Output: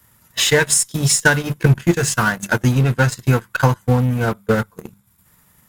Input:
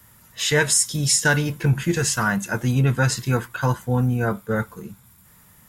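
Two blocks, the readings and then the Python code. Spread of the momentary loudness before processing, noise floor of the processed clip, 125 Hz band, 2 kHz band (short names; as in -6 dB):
8 LU, -58 dBFS, +4.0 dB, +4.5 dB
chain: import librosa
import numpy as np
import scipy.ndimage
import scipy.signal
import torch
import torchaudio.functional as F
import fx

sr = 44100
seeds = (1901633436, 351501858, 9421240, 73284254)

p1 = fx.dynamic_eq(x, sr, hz=5300.0, q=1.8, threshold_db=-36.0, ratio=4.0, max_db=-3)
p2 = fx.hum_notches(p1, sr, base_hz=50, count=4)
p3 = fx.transient(p2, sr, attack_db=11, sustain_db=-8)
p4 = fx.fuzz(p3, sr, gain_db=28.0, gate_db=-33.0)
p5 = p3 + (p4 * 10.0 ** (-6.5 / 20.0))
y = p5 * 10.0 ** (-2.5 / 20.0)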